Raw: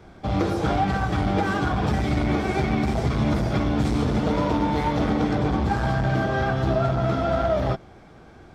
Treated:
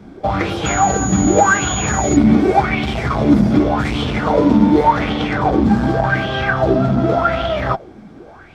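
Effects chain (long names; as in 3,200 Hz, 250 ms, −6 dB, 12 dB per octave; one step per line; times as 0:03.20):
0:00.65–0:02.15: steady tone 6,800 Hz −26 dBFS
auto-filter bell 0.87 Hz 210–3,200 Hz +17 dB
level +2 dB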